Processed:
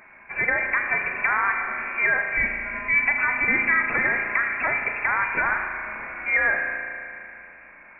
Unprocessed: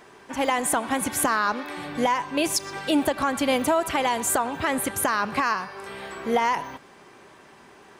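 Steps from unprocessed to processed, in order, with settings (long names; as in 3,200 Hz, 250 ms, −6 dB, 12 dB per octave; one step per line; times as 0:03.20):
voice inversion scrambler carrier 2,600 Hz
spring reverb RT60 2.7 s, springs 35 ms, chirp 75 ms, DRR 3.5 dB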